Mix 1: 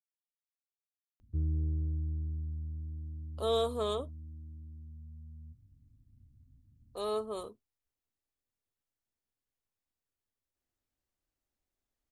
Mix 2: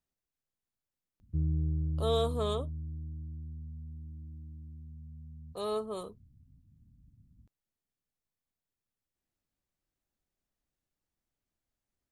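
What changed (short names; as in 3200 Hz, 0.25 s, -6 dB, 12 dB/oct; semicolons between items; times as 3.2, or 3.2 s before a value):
speech: entry -1.40 s; master: add bell 170 Hz +13.5 dB 0.32 oct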